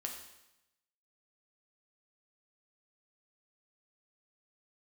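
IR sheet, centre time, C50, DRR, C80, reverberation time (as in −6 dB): 31 ms, 5.5 dB, 1.0 dB, 7.5 dB, 0.90 s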